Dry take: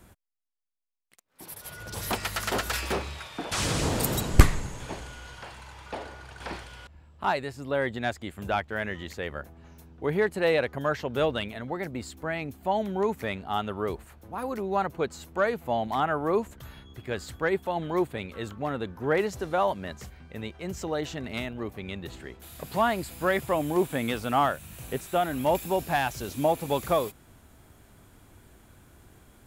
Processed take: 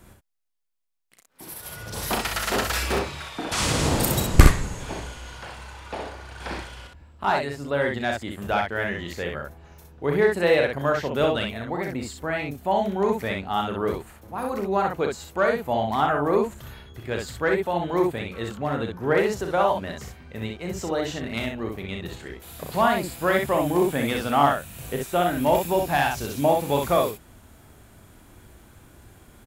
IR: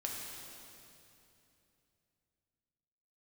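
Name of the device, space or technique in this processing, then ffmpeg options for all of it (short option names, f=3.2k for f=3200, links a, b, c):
slapback doubling: -filter_complex "[0:a]asplit=3[a][b][c];[b]adelay=35,volume=-7.5dB[d];[c]adelay=63,volume=-4dB[e];[a][d][e]amix=inputs=3:normalize=0,volume=2.5dB"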